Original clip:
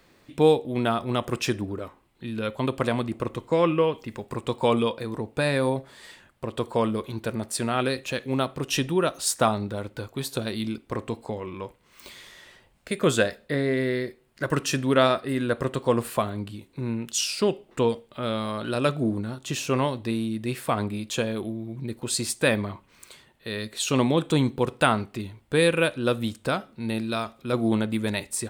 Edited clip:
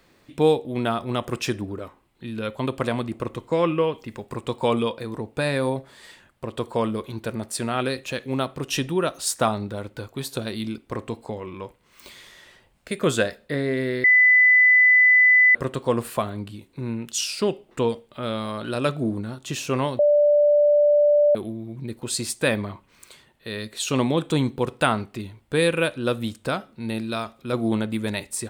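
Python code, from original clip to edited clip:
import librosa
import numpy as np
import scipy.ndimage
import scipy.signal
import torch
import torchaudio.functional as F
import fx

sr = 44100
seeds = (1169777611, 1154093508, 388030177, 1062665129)

y = fx.edit(x, sr, fx.bleep(start_s=14.04, length_s=1.51, hz=2000.0, db=-11.5),
    fx.bleep(start_s=19.99, length_s=1.36, hz=588.0, db=-13.5), tone=tone)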